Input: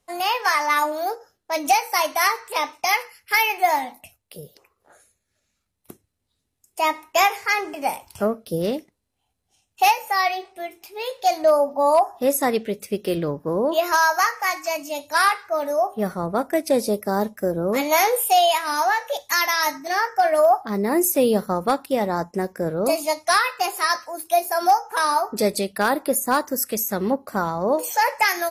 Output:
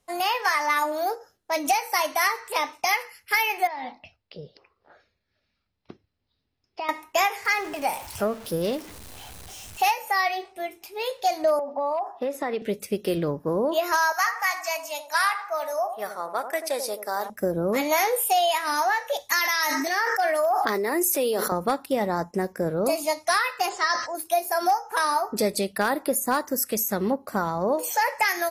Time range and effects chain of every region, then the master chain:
3.67–6.89 s: elliptic low-pass 5.1 kHz + compression 12:1, threshold -27 dBFS
7.45–9.94 s: jump at every zero crossing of -35.5 dBFS + peaking EQ 220 Hz -4 dB 2.2 oct
11.59–12.62 s: three-band isolator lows -12 dB, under 250 Hz, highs -20 dB, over 4 kHz + compression 10:1, threshold -22 dBFS
14.12–17.30 s: high-pass 810 Hz + feedback echo behind a low-pass 86 ms, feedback 35%, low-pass 1.1 kHz, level -8.5 dB
19.39–21.52 s: high-pass 320 Hz 24 dB/octave + peaking EQ 650 Hz -4.5 dB 1.6 oct + decay stretcher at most 21 dB/s
23.69–24.15 s: steep low-pass 7.7 kHz 48 dB/octave + band-stop 2.5 kHz, Q 6.7 + decay stretcher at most 110 dB/s
whole clip: dynamic bell 1.9 kHz, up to +4 dB, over -40 dBFS, Q 6.8; compression 2:1, threshold -22 dBFS

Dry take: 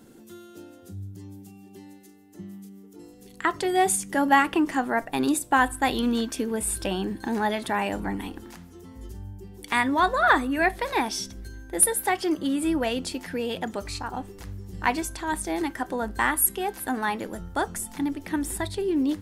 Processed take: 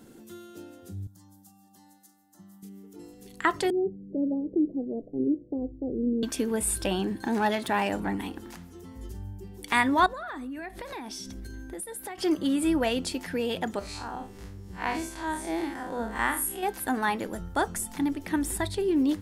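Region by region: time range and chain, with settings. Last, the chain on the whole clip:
1.07–2.63 s: high-pass 470 Hz 6 dB/octave + static phaser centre 1 kHz, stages 4
3.70–6.23 s: steep low-pass 520 Hz 48 dB/octave + bass shelf 170 Hz -7.5 dB
6.99–8.45 s: self-modulated delay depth 0.062 ms + high-pass 72 Hz
10.06–12.18 s: peaking EQ 260 Hz +6.5 dB 0.78 oct + compression 8:1, threshold -35 dBFS
13.79–16.63 s: spectral blur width 106 ms + treble shelf 12 kHz -6 dB + hum notches 50/100/150/200/250/300/350/400/450/500 Hz
whole clip: none

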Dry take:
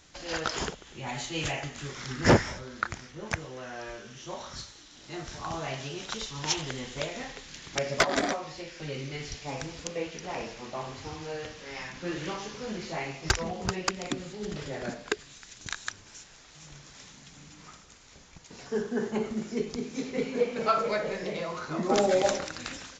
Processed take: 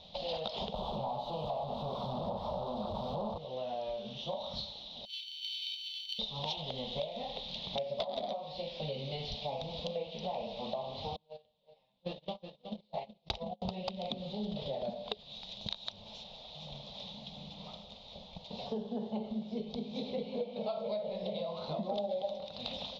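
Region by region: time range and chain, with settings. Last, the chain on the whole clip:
0.74–3.38 s: one-bit comparator + resonant high shelf 1.5 kHz -10.5 dB, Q 3
5.05–6.19 s: sorted samples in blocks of 32 samples + steep high-pass 1.9 kHz 96 dB/octave + frequency shift +300 Hz
11.16–13.62 s: gate -33 dBFS, range -38 dB + delay 370 ms -12.5 dB
whole clip: FFT filter 140 Hz 0 dB, 210 Hz +10 dB, 310 Hz -12 dB, 590 Hz +13 dB, 890 Hz +6 dB, 1.6 kHz -22 dB, 3.7 kHz +13 dB, 7 kHz -25 dB; compression 6:1, threshold -35 dBFS

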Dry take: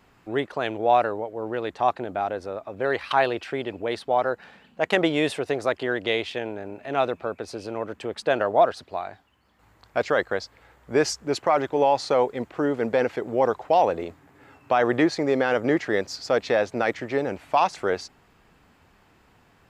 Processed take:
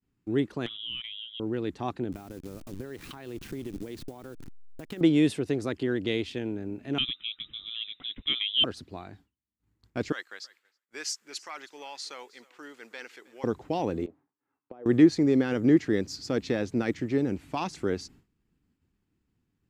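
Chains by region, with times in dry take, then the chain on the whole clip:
0.66–1.40 s: frequency inversion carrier 3.7 kHz + compression 3:1, threshold -30 dBFS
2.12–5.01 s: send-on-delta sampling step -36 dBFS + compression, threshold -32 dBFS
6.98–8.64 s: distance through air 130 m + frequency inversion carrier 3.8 kHz
10.12–13.44 s: high-pass 1.4 kHz + feedback delay 317 ms, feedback 17%, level -21 dB
14.06–14.86 s: compression 10:1, threshold -27 dBFS + auto-wah 500–1200 Hz, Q 2.1, down, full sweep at -33 dBFS
whole clip: expander -46 dBFS; FFT filter 310 Hz 0 dB, 620 Hz -19 dB, 6.9 kHz -7 dB; trim +4.5 dB

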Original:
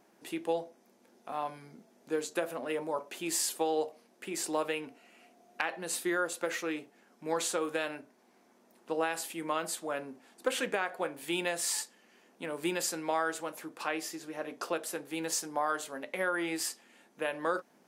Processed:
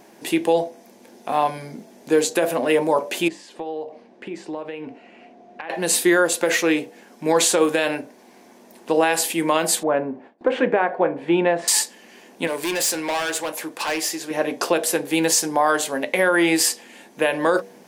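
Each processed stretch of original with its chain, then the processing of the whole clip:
3.28–5.70 s: compression 3:1, threshold -45 dBFS + tape spacing loss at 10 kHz 28 dB
9.83–11.68 s: low-pass 1.4 kHz + gate with hold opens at -51 dBFS, closes at -56 dBFS
12.47–14.31 s: hard clipper -34.5 dBFS + bass shelf 320 Hz -10 dB
whole clip: peaking EQ 1.3 kHz -8.5 dB 0.3 oct; de-hum 96.7 Hz, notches 8; loudness maximiser +23 dB; trim -6.5 dB

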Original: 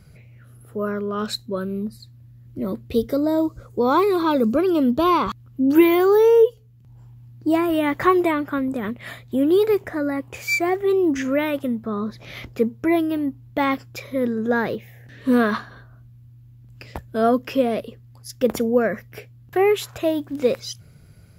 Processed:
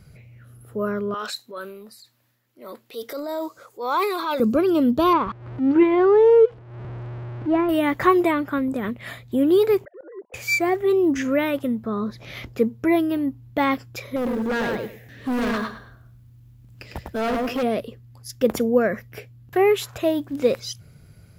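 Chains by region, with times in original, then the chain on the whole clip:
1.14–4.40 s: high-pass 690 Hz + transient shaper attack -6 dB, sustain +6 dB
5.13–7.69 s: jump at every zero crossing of -29 dBFS + low-pass 2 kHz + transient shaper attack -6 dB, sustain -10 dB
9.85–10.34 s: formants replaced by sine waves + band-pass filter 470 Hz, Q 1.3 + slow attack 490 ms
14.16–17.63 s: feedback delay 103 ms, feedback 21%, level -4.5 dB + hard clipper -21.5 dBFS + short-mantissa float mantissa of 4-bit
whole clip: none

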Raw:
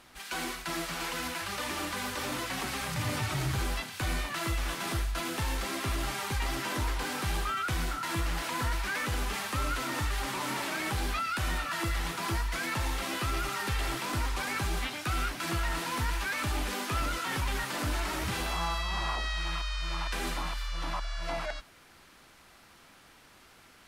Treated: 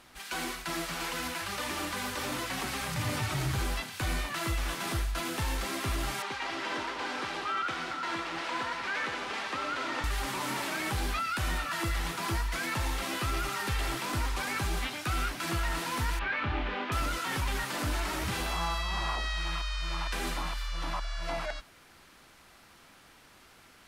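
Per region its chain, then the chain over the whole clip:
6.22–10.04 s: band-pass 300–4500 Hz + two-band feedback delay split 1.1 kHz, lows 193 ms, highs 91 ms, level -7.5 dB
16.19–16.92 s: low-pass 3.2 kHz 24 dB/octave + hum notches 60/120/180/240/300/360/420/480 Hz + doubling 27 ms -5 dB
whole clip: none

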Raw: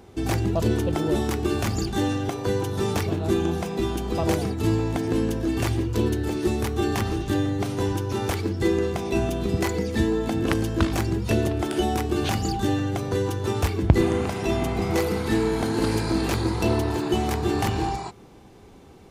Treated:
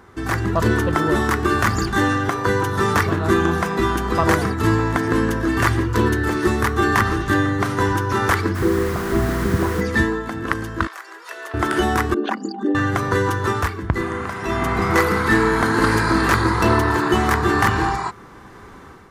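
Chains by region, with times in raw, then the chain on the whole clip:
8.54–9.80 s: Gaussian low-pass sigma 11 samples + added noise pink -39 dBFS
10.87–11.54 s: Bessel high-pass 730 Hz, order 8 + compression 2.5:1, threshold -39 dBFS
12.14–12.75 s: resonances exaggerated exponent 2 + brick-wall FIR high-pass 200 Hz + upward compressor, threshold -29 dBFS
whole clip: high-order bell 1.4 kHz +12.5 dB 1.2 oct; level rider gain up to 7 dB; trim -1 dB

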